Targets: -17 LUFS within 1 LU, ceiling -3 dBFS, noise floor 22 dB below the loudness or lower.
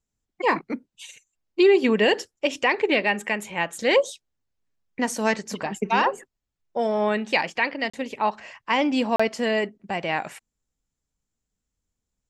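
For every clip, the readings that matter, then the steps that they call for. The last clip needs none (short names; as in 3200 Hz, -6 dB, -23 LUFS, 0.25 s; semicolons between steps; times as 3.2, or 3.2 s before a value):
dropouts 2; longest dropout 35 ms; loudness -23.5 LUFS; peak -8.5 dBFS; loudness target -17.0 LUFS
-> interpolate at 7.9/9.16, 35 ms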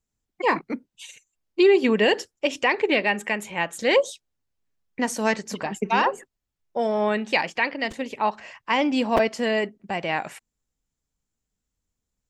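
dropouts 0; loudness -23.5 LUFS; peak -6.5 dBFS; loudness target -17.0 LUFS
-> gain +6.5 dB; limiter -3 dBFS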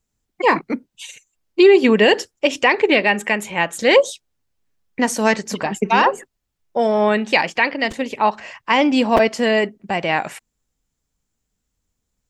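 loudness -17.5 LUFS; peak -3.0 dBFS; noise floor -77 dBFS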